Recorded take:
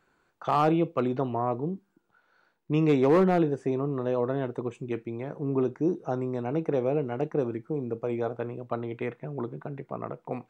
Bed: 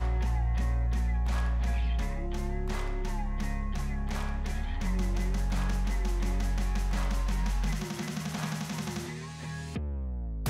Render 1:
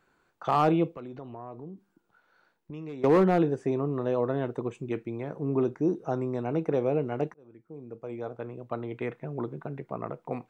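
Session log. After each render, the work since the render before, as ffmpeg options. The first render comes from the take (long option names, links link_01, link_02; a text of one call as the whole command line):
ffmpeg -i in.wav -filter_complex "[0:a]asettb=1/sr,asplit=3[link_01][link_02][link_03];[link_01]atrim=end=0.954[link_04];[link_02]atrim=start=0.95:end=3.04,asetpts=PTS-STARTPTS,afade=type=in:duration=0.004:curve=qsin,afade=type=out:start_time=2.086:duration=0.004:curve=qsin,acompressor=threshold=-42dB:ratio=3:attack=3.2:release=140:knee=1:detection=peak[link_05];[link_03]atrim=start=3.036[link_06];[link_04][link_05]acrossfade=duration=0.004:curve1=hsin:curve2=qsin[link_07];[link_07][link_06]acrossfade=duration=0.004:curve1=qsin:curve2=hsin,asplit=2[link_08][link_09];[link_08]atrim=end=7.34,asetpts=PTS-STARTPTS,afade=type=out:start_time=7.336:duration=0.004:curve=hsin[link_10];[link_09]atrim=start=7.34,asetpts=PTS-STARTPTS,afade=type=in:duration=1.84[link_11];[link_10][link_11]concat=n=2:v=0:a=1" out.wav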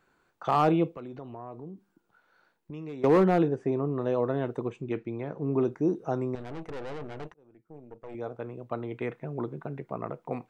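ffmpeg -i in.wav -filter_complex "[0:a]asettb=1/sr,asplit=3[link_01][link_02][link_03];[link_01]atrim=end=3.484[link_04];[link_02]atrim=start=3.48:end=3.99,asetpts=PTS-STARTPTS,afade=type=in:duration=0.004:curve=qsin,afade=type=out:start_time=0.506:duration=0.004:curve=qsin,lowpass=frequency=2300:poles=1[link_05];[link_03]atrim=start=3.986[link_06];[link_04][link_05]acrossfade=duration=0.004:curve1=hsin:curve2=qsin[link_07];[link_07][link_06]acrossfade=duration=0.004:curve1=qsin:curve2=hsin,asettb=1/sr,asplit=3[link_08][link_09][link_10];[link_08]atrim=end=4.704[link_11];[link_09]atrim=start=4.7:end=5.54,asetpts=PTS-STARTPTS,afade=type=in:duration=0.004:curve=qsin,afade=type=out:start_time=0.836:duration=0.004:curve=qsin,lowpass=5000[link_12];[link_10]atrim=start=5.536[link_13];[link_11][link_12]acrossfade=duration=0.004:curve1=hsin:curve2=qsin[link_14];[link_14][link_13]acrossfade=duration=0.004:curve1=qsin:curve2=hsin,asettb=1/sr,asplit=3[link_15][link_16][link_17];[link_15]atrim=end=6.354[link_18];[link_16]atrim=start=6.35:end=8.15,asetpts=PTS-STARTPTS,afade=type=in:duration=0.004:curve=qsin,afade=type=out:start_time=1.796:duration=0.004:curve=qsin,aeval=exprs='(tanh(63.1*val(0)+0.8)-tanh(0.8))/63.1':channel_layout=same[link_19];[link_17]atrim=start=8.146[link_20];[link_18][link_19]acrossfade=duration=0.004:curve1=hsin:curve2=qsin[link_21];[link_21][link_20]acrossfade=duration=0.004:curve1=qsin:curve2=hsin" out.wav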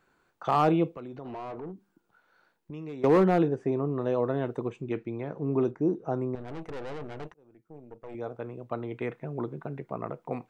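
ffmpeg -i in.wav -filter_complex "[0:a]asplit=3[link_01][link_02][link_03];[link_01]afade=type=out:start_time=1.24:duration=0.02[link_04];[link_02]asplit=2[link_05][link_06];[link_06]highpass=frequency=720:poles=1,volume=22dB,asoftclip=type=tanh:threshold=-30dB[link_07];[link_05][link_07]amix=inputs=2:normalize=0,lowpass=frequency=1400:poles=1,volume=-6dB,afade=type=in:start_time=1.24:duration=0.02,afade=type=out:start_time=1.71:duration=0.02[link_08];[link_03]afade=type=in:start_time=1.71:duration=0.02[link_09];[link_04][link_08][link_09]amix=inputs=3:normalize=0,asettb=1/sr,asplit=3[link_10][link_11][link_12];[link_10]atrim=end=5.714[link_13];[link_11]atrim=start=5.71:end=6.48,asetpts=PTS-STARTPTS,afade=type=in:duration=0.004:curve=qsin,afade=type=out:start_time=0.766:duration=0.004:curve=qsin,highshelf=frequency=2600:gain=-10.5[link_14];[link_12]atrim=start=6.476[link_15];[link_13][link_14]acrossfade=duration=0.004:curve1=hsin:curve2=qsin[link_16];[link_16][link_15]acrossfade=duration=0.004:curve1=qsin:curve2=hsin" out.wav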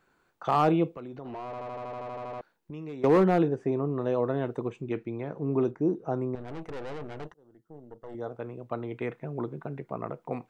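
ffmpeg -i in.wav -filter_complex "[0:a]asettb=1/sr,asplit=3[link_01][link_02][link_03];[link_01]atrim=end=7.254[link_04];[link_02]atrim=start=7.25:end=8.31,asetpts=PTS-STARTPTS,afade=type=in:duration=0.004:curve=qsin,afade=type=out:start_time=1.056:duration=0.004:curve=qsin,asuperstop=centerf=2400:order=4:qfactor=3.4[link_05];[link_03]atrim=start=8.306[link_06];[link_04][link_05]acrossfade=duration=0.004:curve1=hsin:curve2=qsin[link_07];[link_07][link_06]acrossfade=duration=0.004:curve1=qsin:curve2=hsin,asplit=13[link_08][link_09][link_10][link_11][link_12][link_13][link_14][link_15][link_16][link_17][link_18][link_19][link_20];[link_08]atrim=end=1.532[link_21];[link_09]atrim=start=1.448:end=1.532[link_22];[link_10]atrim=start=1.448:end=1.532[link_23];[link_11]atrim=start=1.448:end=1.532[link_24];[link_12]atrim=start=1.448:end=1.532[link_25];[link_13]atrim=start=1.448:end=1.532[link_26];[link_14]atrim=start=1.448:end=1.532[link_27];[link_15]atrim=start=1.448:end=1.532[link_28];[link_16]atrim=start=1.448:end=1.532[link_29];[link_17]atrim=start=1.448:end=1.532[link_30];[link_18]atrim=start=1.448:end=1.532[link_31];[link_19]atrim=start=1.448:end=1.532[link_32];[link_20]atrim=start=2.408[link_33];[link_21][link_22]acrossfade=duration=0.004:curve1=hsin:curve2=hsin[link_34];[link_34][link_23]acrossfade=duration=0.004:curve1=hsin:curve2=hsin[link_35];[link_35][link_24]acrossfade=duration=0.004:curve1=hsin:curve2=hsin[link_36];[link_36][link_25]acrossfade=duration=0.004:curve1=hsin:curve2=hsin[link_37];[link_37][link_26]acrossfade=duration=0.004:curve1=hsin:curve2=hsin[link_38];[link_38][link_27]acrossfade=duration=0.004:curve1=hsin:curve2=hsin[link_39];[link_39][link_28]acrossfade=duration=0.004:curve1=hsin:curve2=hsin[link_40];[link_40][link_29]acrossfade=duration=0.004:curve1=hsin:curve2=hsin[link_41];[link_41][link_30]acrossfade=duration=0.004:curve1=hsin:curve2=hsin[link_42];[link_42][link_31]acrossfade=duration=0.004:curve1=hsin:curve2=hsin[link_43];[link_43][link_32]acrossfade=duration=0.004:curve1=hsin:curve2=hsin[link_44];[link_44][link_33]acrossfade=duration=0.004:curve1=hsin:curve2=hsin" out.wav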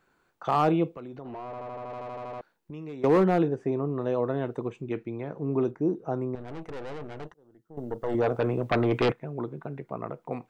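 ffmpeg -i in.wav -filter_complex "[0:a]asettb=1/sr,asplit=3[link_01][link_02][link_03];[link_01]atrim=end=1.224[link_04];[link_02]atrim=start=1.22:end=1.9,asetpts=PTS-STARTPTS,afade=type=in:duration=0.004:curve=qsin,afade=type=out:start_time=0.676:duration=0.004:curve=qsin,highshelf=frequency=2900:gain=-6.5[link_05];[link_03]atrim=start=1.896[link_06];[link_04][link_05]acrossfade=duration=0.004:curve1=hsin:curve2=qsin[link_07];[link_07][link_06]acrossfade=duration=0.004:curve1=qsin:curve2=hsin,asettb=1/sr,asplit=3[link_08][link_09][link_10];[link_08]atrim=end=7.774[link_11];[link_09]atrim=start=7.77:end=9.12,asetpts=PTS-STARTPTS,afade=type=in:duration=0.004:curve=qsin,afade=type=out:start_time=1.346:duration=0.004:curve=qsin,aeval=exprs='0.126*sin(PI/2*3.16*val(0)/0.126)':channel_layout=same[link_12];[link_10]atrim=start=9.116[link_13];[link_11][link_12]acrossfade=duration=0.004:curve1=hsin:curve2=qsin[link_14];[link_14][link_13]acrossfade=duration=0.004:curve1=qsin:curve2=hsin" out.wav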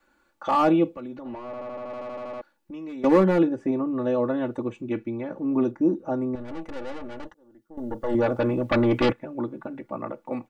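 ffmpeg -i in.wav -af "aecho=1:1:3.5:1,adynamicequalizer=threshold=0.00708:dfrequency=130:dqfactor=1.3:tfrequency=130:tqfactor=1.3:attack=5:release=100:ratio=0.375:range=3.5:mode=boostabove:tftype=bell" out.wav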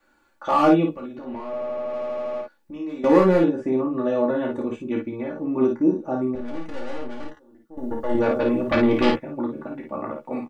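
ffmpeg -i in.wav -filter_complex "[0:a]asplit=2[link_01][link_02];[link_02]adelay=13,volume=-7.5dB[link_03];[link_01][link_03]amix=inputs=2:normalize=0,asplit=2[link_04][link_05];[link_05]aecho=0:1:28|54:0.473|0.631[link_06];[link_04][link_06]amix=inputs=2:normalize=0" out.wav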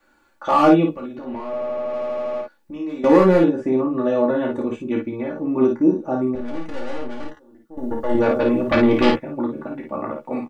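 ffmpeg -i in.wav -af "volume=3dB,alimiter=limit=-1dB:level=0:latency=1" out.wav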